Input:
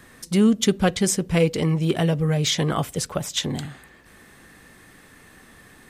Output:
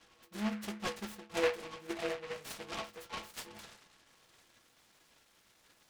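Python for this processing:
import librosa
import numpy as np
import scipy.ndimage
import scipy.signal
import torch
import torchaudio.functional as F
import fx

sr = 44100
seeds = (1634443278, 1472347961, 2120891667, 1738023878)

p1 = fx.diode_clip(x, sr, knee_db=-14.0)
p2 = fx.level_steps(p1, sr, step_db=21)
p3 = p1 + (p2 * 10.0 ** (3.0 / 20.0))
p4 = fx.stiff_resonator(p3, sr, f0_hz=100.0, decay_s=0.5, stiffness=0.03)
p5 = fx.filter_sweep_bandpass(p4, sr, from_hz=1100.0, to_hz=3200.0, start_s=2.88, end_s=4.69, q=1.3)
p6 = fx.noise_mod_delay(p5, sr, seeds[0], noise_hz=1600.0, depth_ms=0.15)
y = p6 * 10.0 ** (1.0 / 20.0)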